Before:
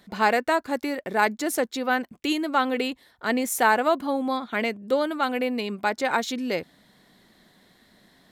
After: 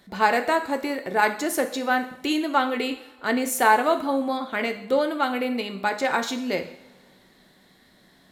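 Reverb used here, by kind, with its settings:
coupled-rooms reverb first 0.61 s, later 2.5 s, from −21 dB, DRR 6 dB

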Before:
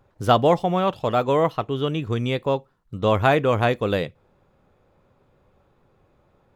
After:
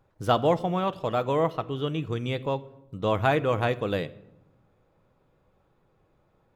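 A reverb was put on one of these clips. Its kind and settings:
rectangular room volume 3,800 cubic metres, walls furnished, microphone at 0.62 metres
level −5.5 dB

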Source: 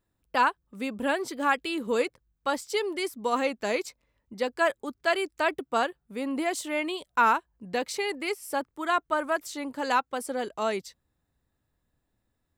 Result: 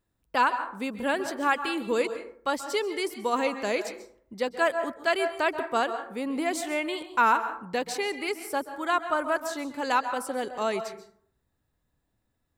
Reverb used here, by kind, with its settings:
dense smooth reverb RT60 0.58 s, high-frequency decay 0.45×, pre-delay 120 ms, DRR 9.5 dB

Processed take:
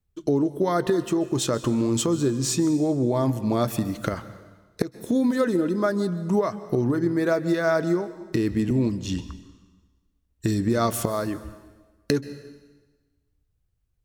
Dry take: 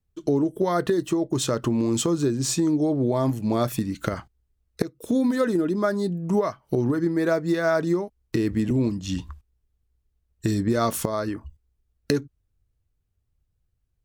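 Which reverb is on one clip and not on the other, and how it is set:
dense smooth reverb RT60 1.3 s, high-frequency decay 0.95×, pre-delay 120 ms, DRR 14.5 dB

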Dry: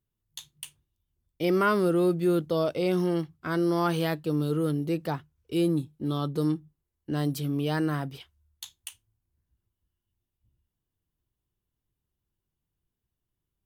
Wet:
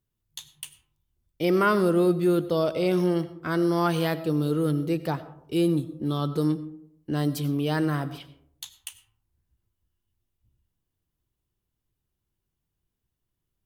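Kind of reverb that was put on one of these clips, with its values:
comb and all-pass reverb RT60 0.73 s, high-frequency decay 0.35×, pre-delay 55 ms, DRR 14.5 dB
level +2 dB

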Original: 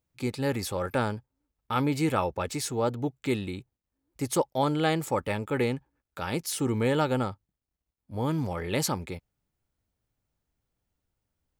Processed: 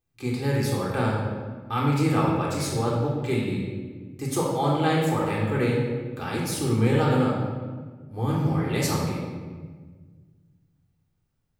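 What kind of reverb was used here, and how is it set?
rectangular room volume 1,500 cubic metres, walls mixed, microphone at 3.7 metres
level −4 dB

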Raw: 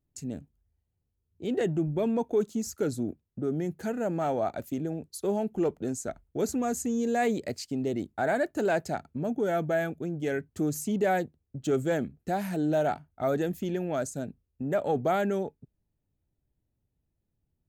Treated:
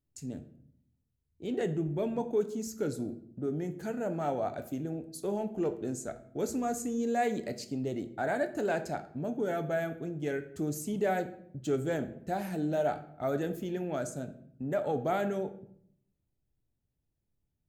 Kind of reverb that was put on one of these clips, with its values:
rectangular room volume 120 cubic metres, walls mixed, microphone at 0.33 metres
level −4.5 dB

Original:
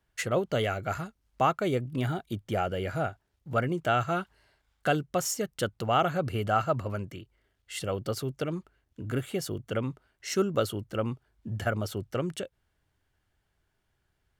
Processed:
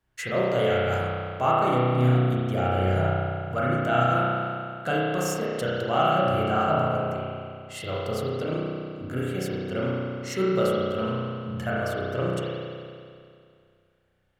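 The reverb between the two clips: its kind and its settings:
spring reverb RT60 2.3 s, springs 32 ms, chirp 55 ms, DRR −7 dB
level −3 dB

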